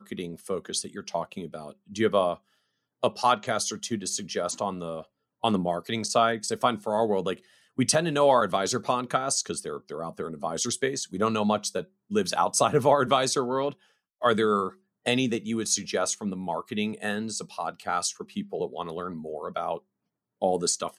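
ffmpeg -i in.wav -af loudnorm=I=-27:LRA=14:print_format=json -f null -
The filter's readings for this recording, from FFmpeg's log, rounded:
"input_i" : "-27.7",
"input_tp" : "-7.8",
"input_lra" : "6.3",
"input_thresh" : "-37.9",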